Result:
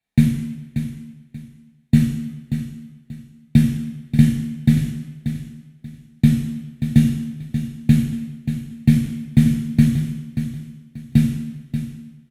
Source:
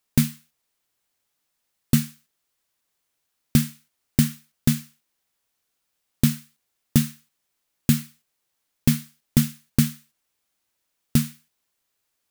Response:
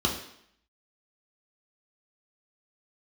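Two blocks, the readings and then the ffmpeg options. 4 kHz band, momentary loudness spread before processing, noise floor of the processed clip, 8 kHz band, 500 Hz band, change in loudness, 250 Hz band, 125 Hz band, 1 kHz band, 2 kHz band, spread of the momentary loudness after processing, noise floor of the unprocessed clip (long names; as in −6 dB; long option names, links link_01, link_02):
−3.5 dB, 6 LU, −54 dBFS, −8.5 dB, 0.0 dB, +4.0 dB, +7.5 dB, +8.0 dB, can't be measured, +1.5 dB, 21 LU, −77 dBFS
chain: -filter_complex "[0:a]aecho=1:1:584|1168|1752:0.335|0.0904|0.0244[link_01];[1:a]atrim=start_sample=2205,asetrate=26460,aresample=44100[link_02];[link_01][link_02]afir=irnorm=-1:irlink=0,volume=-15.5dB"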